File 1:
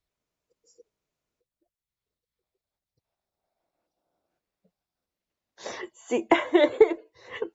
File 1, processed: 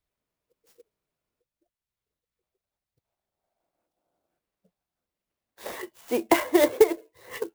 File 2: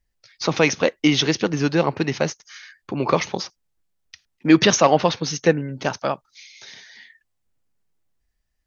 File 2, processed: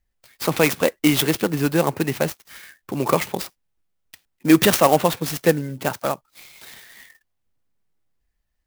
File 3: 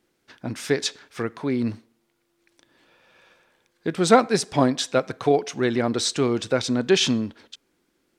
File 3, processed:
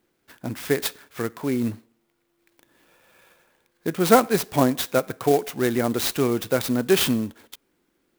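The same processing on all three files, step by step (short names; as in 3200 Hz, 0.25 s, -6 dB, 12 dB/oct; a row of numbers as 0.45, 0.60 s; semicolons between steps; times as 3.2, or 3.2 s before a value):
clock jitter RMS 0.042 ms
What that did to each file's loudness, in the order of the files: 0.0, 0.0, 0.0 LU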